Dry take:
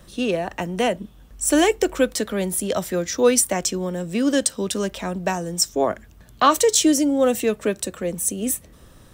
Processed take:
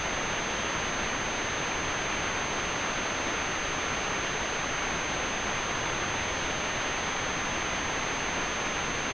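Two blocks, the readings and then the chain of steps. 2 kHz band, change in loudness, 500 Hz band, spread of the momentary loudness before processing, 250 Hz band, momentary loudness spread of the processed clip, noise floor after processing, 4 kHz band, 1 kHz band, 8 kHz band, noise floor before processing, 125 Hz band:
+3.0 dB, -8.0 dB, -14.0 dB, 10 LU, -15.5 dB, 0 LU, -32 dBFS, -3.0 dB, -5.0 dB, -8.5 dB, -49 dBFS, -6.0 dB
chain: reverse delay 0.21 s, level -12.5 dB; spectral gate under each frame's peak -20 dB weak; HPF 370 Hz 24 dB/oct; bell 1000 Hz -12 dB 1.7 oct; harmonic-percussive split percussive -12 dB; compressor, threshold -48 dBFS, peak gain reduction 15 dB; requantised 6-bit, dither triangular; doubler 38 ms -4.5 dB; pulse-width modulation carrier 6300 Hz; gain +8.5 dB

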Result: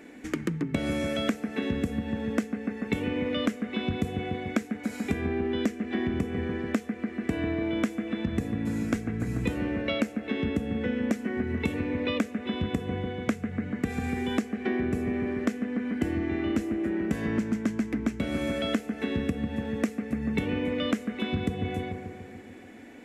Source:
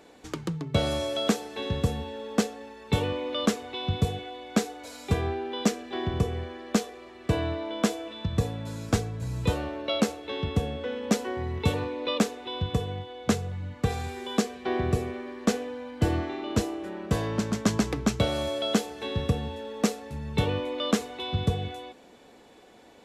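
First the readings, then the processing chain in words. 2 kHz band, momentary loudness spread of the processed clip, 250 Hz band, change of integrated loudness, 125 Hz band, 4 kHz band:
+2.0 dB, 4 LU, +2.5 dB, -0.5 dB, -4.5 dB, -5.5 dB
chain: graphic EQ 125/250/500/1000/2000/4000 Hz -5/+12/-3/-7/+11/-9 dB; on a send: analogue delay 0.145 s, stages 2048, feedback 62%, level -9 dB; on the sum: compressor 10:1, threshold -26 dBFS, peak gain reduction 16.5 dB; gain +2 dB

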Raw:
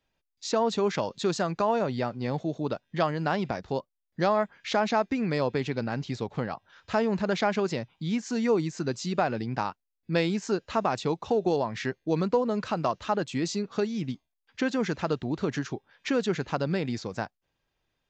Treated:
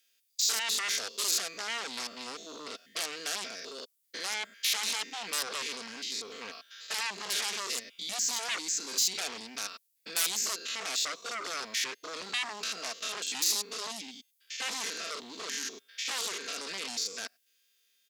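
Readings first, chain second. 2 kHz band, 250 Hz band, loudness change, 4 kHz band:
-0.5 dB, -22.0 dB, -3.5 dB, +8.0 dB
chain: stepped spectrum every 0.1 s; fixed phaser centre 360 Hz, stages 4; comb 4.4 ms, depth 58%; sine folder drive 14 dB, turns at -17.5 dBFS; differentiator

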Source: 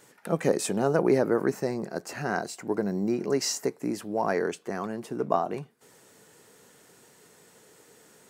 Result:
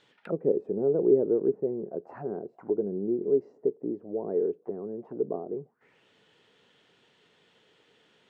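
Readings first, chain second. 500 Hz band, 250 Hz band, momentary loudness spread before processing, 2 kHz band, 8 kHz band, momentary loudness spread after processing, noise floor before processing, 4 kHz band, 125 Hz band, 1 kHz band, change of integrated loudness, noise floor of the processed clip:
+1.0 dB, -2.5 dB, 10 LU, under -20 dB, under -40 dB, 14 LU, -58 dBFS, under -20 dB, -7.0 dB, -15.0 dB, -1.0 dB, -65 dBFS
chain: envelope low-pass 420–3700 Hz down, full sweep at -29 dBFS; gain -8.5 dB

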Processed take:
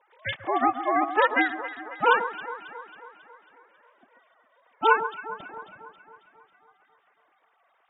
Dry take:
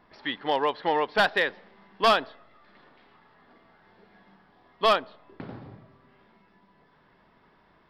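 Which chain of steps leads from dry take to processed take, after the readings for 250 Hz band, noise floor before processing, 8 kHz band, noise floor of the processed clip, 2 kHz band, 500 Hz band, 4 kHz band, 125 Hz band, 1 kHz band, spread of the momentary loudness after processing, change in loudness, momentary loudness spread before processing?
+3.5 dB, -62 dBFS, under -25 dB, -68 dBFS, +3.0 dB, -1.5 dB, -7.5 dB, n/a, +3.0 dB, 17 LU, 0.0 dB, 20 LU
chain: sine-wave speech; ring modulator 220 Hz; echo with dull and thin repeats by turns 0.136 s, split 1500 Hz, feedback 74%, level -10.5 dB; gain +4 dB

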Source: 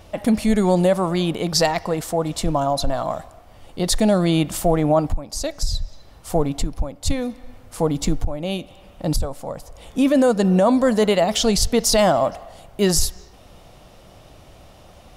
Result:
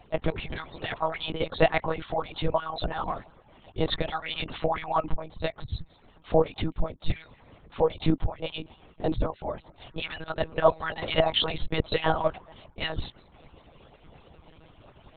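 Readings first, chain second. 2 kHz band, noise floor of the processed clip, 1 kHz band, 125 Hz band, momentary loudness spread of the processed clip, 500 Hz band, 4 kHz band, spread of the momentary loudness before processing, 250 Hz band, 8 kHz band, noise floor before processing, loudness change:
-2.5 dB, -58 dBFS, -5.5 dB, -9.0 dB, 14 LU, -8.0 dB, -6.0 dB, 14 LU, -14.0 dB, under -40 dB, -47 dBFS, -9.0 dB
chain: median-filter separation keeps percussive; monotone LPC vocoder at 8 kHz 160 Hz

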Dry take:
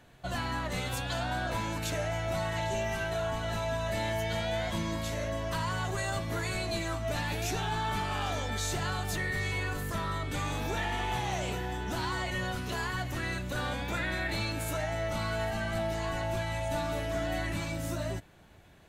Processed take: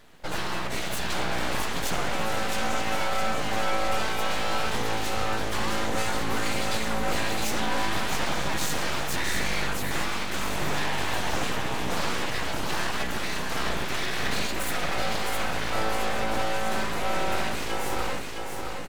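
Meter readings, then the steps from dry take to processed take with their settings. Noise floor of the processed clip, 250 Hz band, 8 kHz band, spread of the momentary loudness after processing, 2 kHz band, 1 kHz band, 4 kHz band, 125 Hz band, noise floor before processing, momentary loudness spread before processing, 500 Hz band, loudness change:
-29 dBFS, +3.5 dB, +7.0 dB, 3 LU, +5.5 dB, +6.0 dB, +7.0 dB, -3.0 dB, -38 dBFS, 2 LU, +2.5 dB, +4.5 dB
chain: feedback echo 0.663 s, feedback 49%, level -4.5 dB; full-wave rectifier; gain +6 dB

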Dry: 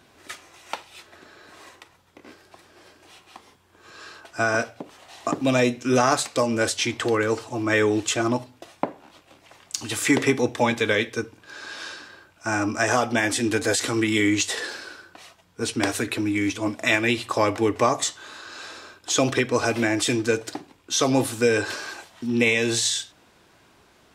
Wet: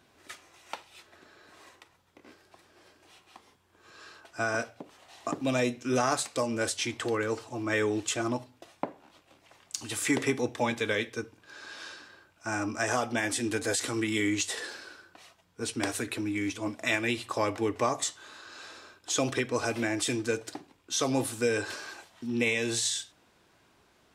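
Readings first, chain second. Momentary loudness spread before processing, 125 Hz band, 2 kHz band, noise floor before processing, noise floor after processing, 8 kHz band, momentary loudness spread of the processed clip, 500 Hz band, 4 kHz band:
17 LU, -7.5 dB, -7.5 dB, -58 dBFS, -65 dBFS, -5.5 dB, 18 LU, -7.5 dB, -7.0 dB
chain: dynamic EQ 9400 Hz, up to +4 dB, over -42 dBFS, Q 1.4; gain -7.5 dB

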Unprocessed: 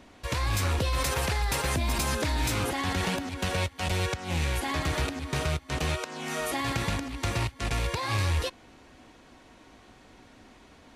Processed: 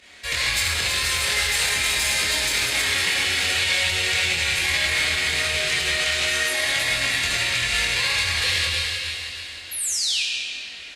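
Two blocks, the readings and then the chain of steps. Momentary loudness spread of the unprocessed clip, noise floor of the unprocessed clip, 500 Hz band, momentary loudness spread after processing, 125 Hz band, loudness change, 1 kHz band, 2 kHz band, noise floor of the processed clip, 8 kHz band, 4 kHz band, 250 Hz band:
4 LU, -54 dBFS, -0.5 dB, 6 LU, -6.5 dB, +9.0 dB, -0.5 dB, +13.5 dB, -37 dBFS, +12.5 dB, +15.0 dB, -7.5 dB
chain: HPF 83 Hz 6 dB/oct; pump 144 bpm, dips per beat 2, -10 dB, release 68 ms; notch 5800 Hz, Q 15; on a send: thin delay 0.318 s, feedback 50%, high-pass 2200 Hz, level -5 dB; on the sum: painted sound fall, 9.71–10.23, 2300–12000 Hz -39 dBFS; high shelf 3800 Hz +4.5 dB; doubler 24 ms -3.5 dB; digital reverb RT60 2.6 s, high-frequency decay 0.85×, pre-delay 30 ms, DRR -2 dB; limiter -18.5 dBFS, peak gain reduction 7.5 dB; graphic EQ 125/250/1000/2000/4000/8000 Hz -6/-9/-7/+11/+7/+6 dB; Opus 48 kbps 48000 Hz

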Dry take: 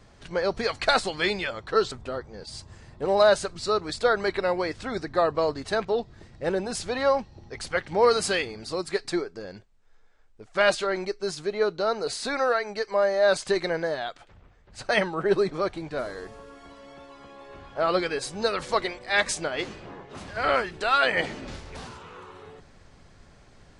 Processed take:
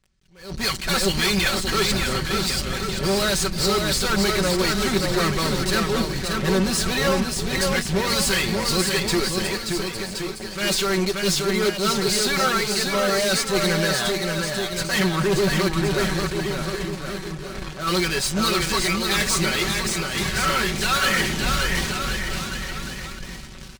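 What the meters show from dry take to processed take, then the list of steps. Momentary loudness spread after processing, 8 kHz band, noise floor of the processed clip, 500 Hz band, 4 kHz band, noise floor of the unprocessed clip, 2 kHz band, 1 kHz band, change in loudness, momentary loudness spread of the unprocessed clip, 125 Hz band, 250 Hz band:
8 LU, +13.5 dB, -35 dBFS, 0.0 dB, +10.5 dB, -54 dBFS, +5.5 dB, +2.0 dB, +4.5 dB, 18 LU, +14.5 dB, +10.5 dB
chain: passive tone stack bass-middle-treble 6-0-2; in parallel at -4 dB: fuzz box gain 56 dB, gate -60 dBFS; on the sum: limiter -20 dBFS, peak gain reduction 6.5 dB; comb 5.3 ms, depth 60%; on a send: bouncing-ball echo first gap 0.58 s, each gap 0.85×, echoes 5; on the sum: attack slew limiter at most 120 dB/s

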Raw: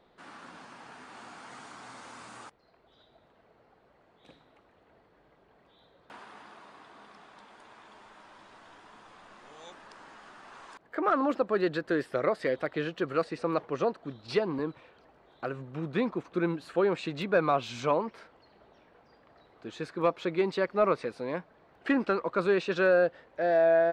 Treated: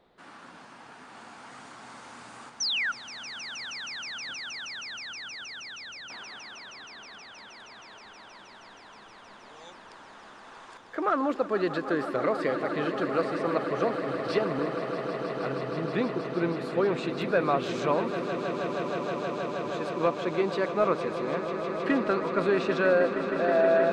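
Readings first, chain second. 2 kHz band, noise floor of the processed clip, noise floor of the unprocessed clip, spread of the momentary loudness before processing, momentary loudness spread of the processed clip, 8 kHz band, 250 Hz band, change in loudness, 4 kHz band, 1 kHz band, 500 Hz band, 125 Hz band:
+3.0 dB, -50 dBFS, -64 dBFS, 22 LU, 22 LU, n/a, +2.5 dB, +0.5 dB, +9.0 dB, +2.5 dB, +1.5 dB, +2.5 dB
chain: painted sound fall, 2.6–2.92, 1300–6300 Hz -28 dBFS; swelling echo 0.158 s, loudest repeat 8, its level -12.5 dB

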